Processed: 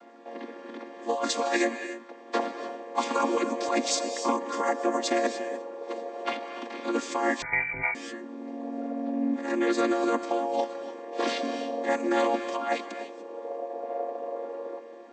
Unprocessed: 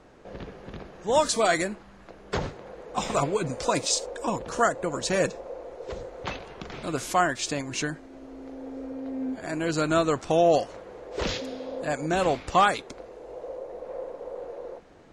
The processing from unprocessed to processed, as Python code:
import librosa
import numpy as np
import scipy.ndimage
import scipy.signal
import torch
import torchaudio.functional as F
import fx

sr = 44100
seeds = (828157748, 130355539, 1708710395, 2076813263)

y = fx.chord_vocoder(x, sr, chord='minor triad', root=58)
y = fx.highpass(y, sr, hz=830.0, slope=6)
y = fx.over_compress(y, sr, threshold_db=-32.0, ratio=-1.0)
y = fx.rev_gated(y, sr, seeds[0], gate_ms=320, shape='rising', drr_db=8.5)
y = fx.freq_invert(y, sr, carrier_hz=2600, at=(7.42, 7.95))
y = F.gain(torch.from_numpy(y), 7.0).numpy()